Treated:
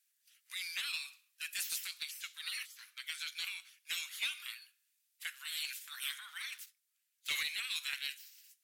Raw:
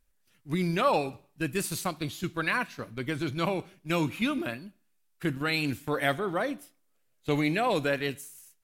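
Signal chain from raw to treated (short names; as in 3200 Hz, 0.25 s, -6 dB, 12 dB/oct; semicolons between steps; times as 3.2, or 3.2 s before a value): spectral gate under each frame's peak -15 dB weak; 6.52–7.43 sample leveller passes 2; Bessel high-pass 2600 Hz, order 6; soft clip -32 dBFS, distortion -16 dB; gain +4.5 dB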